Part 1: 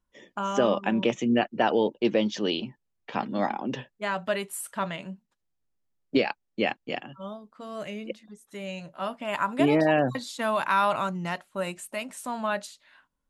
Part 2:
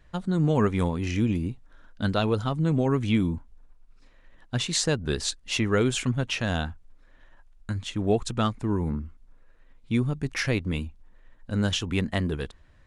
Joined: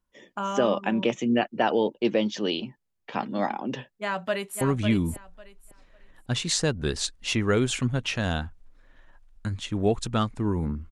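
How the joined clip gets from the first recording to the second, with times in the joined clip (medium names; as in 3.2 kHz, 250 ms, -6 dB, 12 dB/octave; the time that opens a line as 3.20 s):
part 1
3.86–4.61 s: echo throw 550 ms, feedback 20%, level -7.5 dB
4.61 s: go over to part 2 from 2.85 s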